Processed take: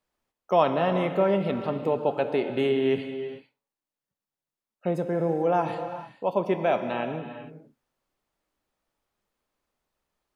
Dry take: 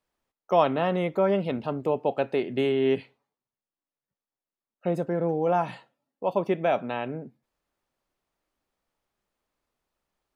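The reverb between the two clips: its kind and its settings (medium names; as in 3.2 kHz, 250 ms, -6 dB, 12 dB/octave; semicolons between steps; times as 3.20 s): gated-style reverb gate 470 ms flat, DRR 7 dB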